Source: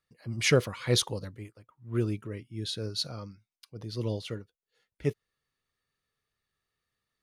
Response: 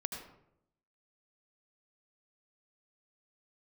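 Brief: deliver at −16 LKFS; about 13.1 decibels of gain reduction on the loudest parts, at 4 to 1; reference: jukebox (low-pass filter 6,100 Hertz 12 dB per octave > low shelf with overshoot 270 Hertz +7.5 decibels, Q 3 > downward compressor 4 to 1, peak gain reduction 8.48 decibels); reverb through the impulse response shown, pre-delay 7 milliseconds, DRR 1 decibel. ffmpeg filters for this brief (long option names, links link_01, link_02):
-filter_complex "[0:a]acompressor=threshold=-33dB:ratio=4,asplit=2[link_01][link_02];[1:a]atrim=start_sample=2205,adelay=7[link_03];[link_02][link_03]afir=irnorm=-1:irlink=0,volume=-2dB[link_04];[link_01][link_04]amix=inputs=2:normalize=0,lowpass=6100,lowshelf=frequency=270:width_type=q:width=3:gain=7.5,acompressor=threshold=-28dB:ratio=4,volume=18dB"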